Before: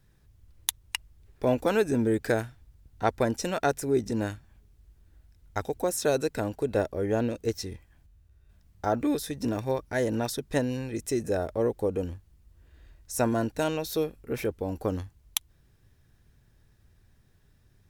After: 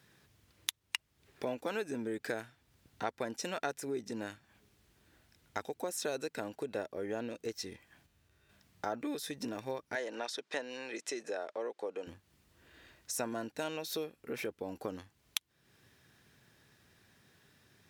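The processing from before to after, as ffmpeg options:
-filter_complex "[0:a]asettb=1/sr,asplit=3[a][b][c];[a]atrim=end=9.954[d];[b]atrim=start=9.95:end=12.07,asetpts=PTS-STARTPTS,afade=t=in:d=0.004:c=qsin,afade=t=out:st=2.116:d=0.004:c=qsin,highpass=470,lowpass=6.3k[e];[c]atrim=start=12.066[f];[d][e]acrossfade=d=0.004:c1=hsin:c2=qsin[g];[g][f]acrossfade=d=0.004:c1=qsin:c2=hsin,acompressor=threshold=-45dB:ratio=2.5,highpass=180,equalizer=f=2.7k:w=0.44:g=6,volume=2.5dB"

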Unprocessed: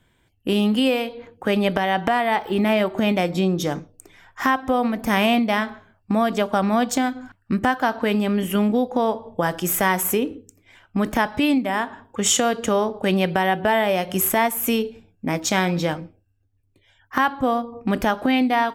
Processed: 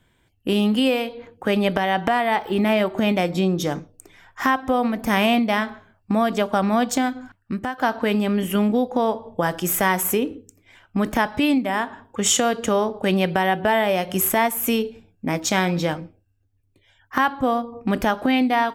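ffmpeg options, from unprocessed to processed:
-filter_complex "[0:a]asplit=2[a][b];[a]atrim=end=7.78,asetpts=PTS-STARTPTS,afade=t=out:st=7.17:d=0.61:silence=0.298538[c];[b]atrim=start=7.78,asetpts=PTS-STARTPTS,afade=t=in:d=0.004:c=hsin:silence=0.298538[d];[c][d]concat=n=2:v=0:a=1"

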